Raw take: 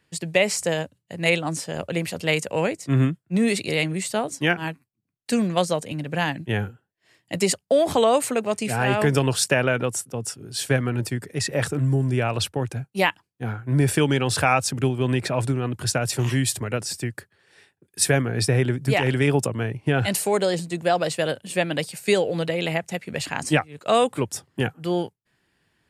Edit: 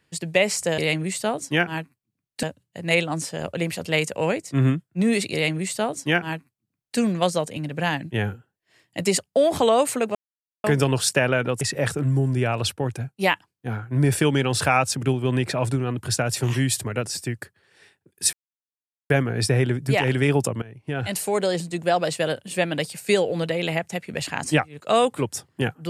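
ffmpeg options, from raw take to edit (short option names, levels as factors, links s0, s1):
-filter_complex "[0:a]asplit=8[s0][s1][s2][s3][s4][s5][s6][s7];[s0]atrim=end=0.782[s8];[s1]atrim=start=3.678:end=5.332[s9];[s2]atrim=start=0.778:end=8.5,asetpts=PTS-STARTPTS,afade=t=out:st=7.718:d=0.004:c=hsin[s10];[s3]atrim=start=8.5:end=8.99,asetpts=PTS-STARTPTS,volume=0[s11];[s4]atrim=start=8.99:end=9.962,asetpts=PTS-STARTPTS,afade=t=in:d=0.004:c=hsin[s12];[s5]atrim=start=11.368:end=18.09,asetpts=PTS-STARTPTS,afade=t=out:st=6.718:d=0.004:c=hsin,apad=pad_dur=0.77[s13];[s6]atrim=start=18.09:end=19.61,asetpts=PTS-STARTPTS,afade=t=in:d=0.004:c=hsin,afade=t=out:st=1.516:d=0.004:c=hsin:silence=0.1[s14];[s7]atrim=start=19.61,asetpts=PTS-STARTPTS,afade=t=in:d=1.2:c=qsin:silence=0.1[s15];[s8][s9]acrossfade=d=0.004:c1=hsin:c2=hsin[s16];[s10][s11][s12]concat=n=3:v=0:a=1[s17];[s16][s17]acrossfade=d=0.004:c1=hsin:c2=hsin[s18];[s13][s14][s15]concat=n=3:v=0:a=1[s19];[s18][s19]acrossfade=d=0.004:c1=hsin:c2=hsin"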